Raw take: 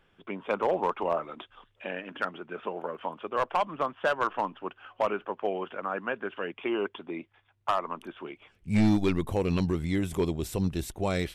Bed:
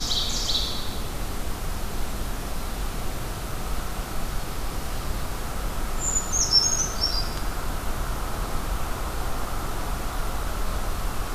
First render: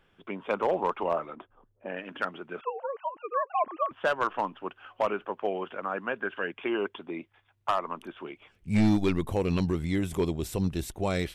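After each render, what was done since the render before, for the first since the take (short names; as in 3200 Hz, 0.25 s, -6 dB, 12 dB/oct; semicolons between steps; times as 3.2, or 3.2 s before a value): 0.83–1.97 low-pass opened by the level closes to 430 Hz, open at -24 dBFS; 2.61–3.91 sine-wave speech; 6.21–6.77 bell 1600 Hz +8.5 dB 0.21 oct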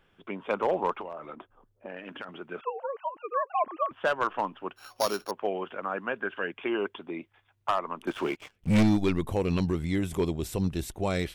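1.01–2.29 compressor 12:1, threshold -34 dBFS; 4.76–5.31 sample sorter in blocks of 8 samples; 8.07–8.83 sample leveller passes 3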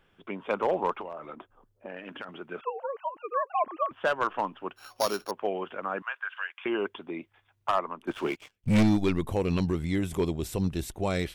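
6.02–6.66 HPF 1000 Hz 24 dB/oct; 7.72–8.68 three-band expander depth 100%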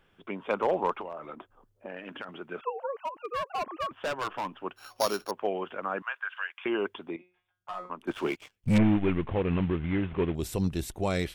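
2.95–4.49 hard clip -28 dBFS; 7.16–7.9 resonator 180 Hz, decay 0.39 s, mix 90%; 8.78–10.35 CVSD 16 kbps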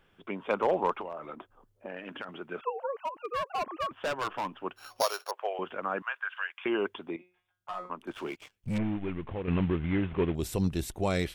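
5.02–5.59 inverse Chebyshev high-pass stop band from 200 Hz, stop band 50 dB; 7.99–9.48 compressor 1.5:1, threshold -44 dBFS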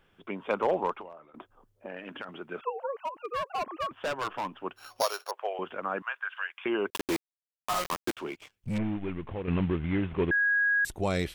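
0.75–1.34 fade out linear, to -21.5 dB; 6.9–8.17 companded quantiser 2-bit; 10.31–10.85 bleep 1650 Hz -22 dBFS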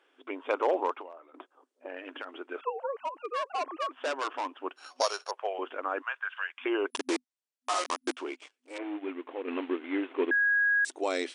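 FFT band-pass 250–10000 Hz; dynamic EQ 5800 Hz, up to +3 dB, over -53 dBFS, Q 2.6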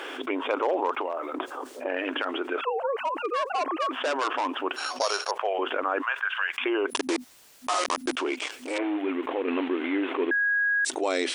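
fast leveller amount 70%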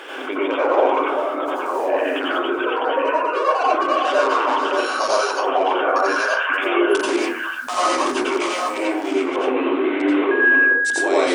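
reverse delay 0.626 s, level -5 dB; plate-style reverb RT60 0.52 s, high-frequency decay 0.4×, pre-delay 75 ms, DRR -6.5 dB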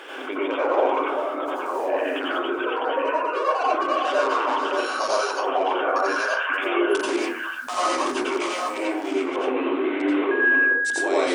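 gain -4 dB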